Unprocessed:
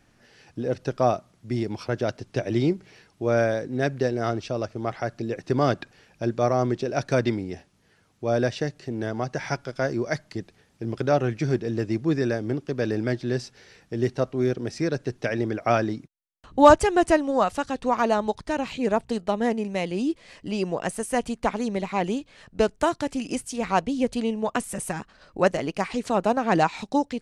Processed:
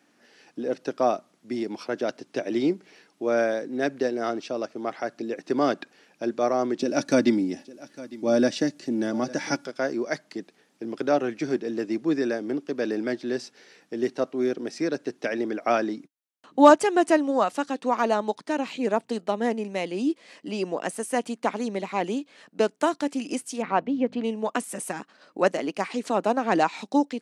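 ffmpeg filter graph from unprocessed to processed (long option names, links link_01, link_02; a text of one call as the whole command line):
ffmpeg -i in.wav -filter_complex "[0:a]asettb=1/sr,asplit=3[link_01][link_02][link_03];[link_01]atrim=end=6.794[link_04];[link_02]atrim=start=6.79:end=9.67,asetpts=PTS-STARTPTS,afade=type=in:duration=0.004:curve=qsin,afade=type=out:start_time=2.876:duration=0.004:curve=qsin,bass=frequency=250:gain=12,treble=frequency=4000:gain=7,aecho=1:1:3.5:0.43,atrim=end_sample=127008,aecho=1:1:855:0.112,atrim=end_sample=127008[link_05];[link_03]atrim=start=9.666[link_06];[link_04][link_05]acrossfade=duration=0.004:curve1=hsin:curve2=qsin[link_07];[link_07][link_06]acrossfade=duration=0.004:curve1=qsin:curve2=hsin,asettb=1/sr,asplit=3[link_08][link_09][link_10];[link_08]atrim=end=23.624[link_11];[link_09]atrim=start=23.62:end=24.24,asetpts=PTS-STARTPTS,afade=type=in:duration=0.004:curve=qsin,afade=type=out:start_time=0.616:duration=0.004:curve=qsin,lowpass=2300,acompressor=mode=upward:threshold=-28dB:ratio=2.5:attack=3.2:release=140:knee=2.83:detection=peak,aeval=exprs='val(0)+0.0178*(sin(2*PI*50*n/s)+sin(2*PI*2*50*n/s)/2+sin(2*PI*3*50*n/s)/3+sin(2*PI*4*50*n/s)/4+sin(2*PI*5*50*n/s)/5)':channel_layout=same[link_12];[link_10]atrim=start=24.236[link_13];[link_11][link_12]acrossfade=duration=0.004:curve1=hsin:curve2=qsin[link_14];[link_14][link_13]acrossfade=duration=0.004:curve1=qsin:curve2=hsin,highpass=frequency=210:width=0.5412,highpass=frequency=210:width=1.3066,equalizer=frequency=290:width=7.1:gain=4,volume=-1dB" out.wav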